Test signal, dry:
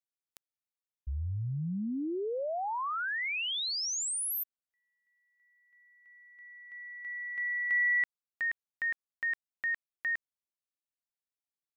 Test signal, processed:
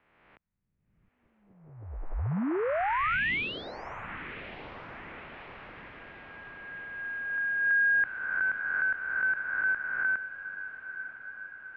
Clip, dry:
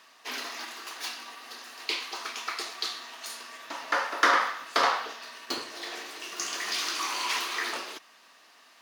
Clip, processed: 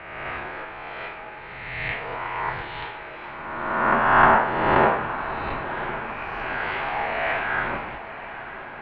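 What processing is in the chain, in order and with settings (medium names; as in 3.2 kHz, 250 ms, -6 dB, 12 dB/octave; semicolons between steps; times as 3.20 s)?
reverse spectral sustain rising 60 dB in 1.54 s; mistuned SSB -320 Hz 320–2700 Hz; echo that smears into a reverb 1007 ms, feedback 65%, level -13 dB; trim +3.5 dB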